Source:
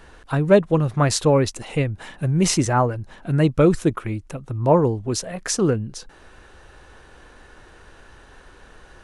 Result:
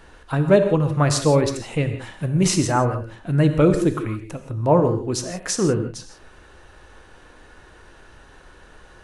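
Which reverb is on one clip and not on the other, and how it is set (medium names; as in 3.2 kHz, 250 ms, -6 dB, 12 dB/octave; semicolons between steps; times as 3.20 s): gated-style reverb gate 190 ms flat, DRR 7 dB; trim -1 dB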